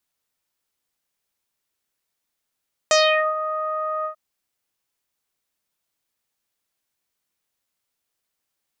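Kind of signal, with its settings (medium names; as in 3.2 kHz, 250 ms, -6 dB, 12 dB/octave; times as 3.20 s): synth note saw D#5 24 dB/octave, low-pass 1.3 kHz, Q 3.2, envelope 2.5 oct, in 0.36 s, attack 1.2 ms, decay 0.43 s, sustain -14 dB, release 0.10 s, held 1.14 s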